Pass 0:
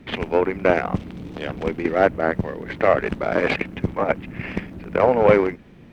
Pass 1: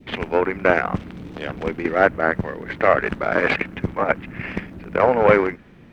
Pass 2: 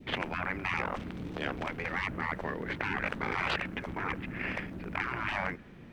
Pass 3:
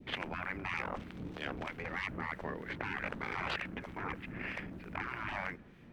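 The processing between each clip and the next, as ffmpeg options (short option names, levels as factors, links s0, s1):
-af "adynamicequalizer=threshold=0.0178:dfrequency=1500:dqfactor=1.2:tfrequency=1500:tqfactor=1.2:attack=5:release=100:ratio=0.375:range=3.5:mode=boostabove:tftype=bell,volume=0.891"
-af "afftfilt=real='re*lt(hypot(re,im),0.2)':imag='im*lt(hypot(re,im),0.2)':win_size=1024:overlap=0.75,volume=0.668"
-filter_complex "[0:a]acrossover=split=1300[s0][s1];[s0]aeval=exprs='val(0)*(1-0.5/2+0.5/2*cos(2*PI*3.2*n/s))':c=same[s2];[s1]aeval=exprs='val(0)*(1-0.5/2-0.5/2*cos(2*PI*3.2*n/s))':c=same[s3];[s2][s3]amix=inputs=2:normalize=0,volume=0.708"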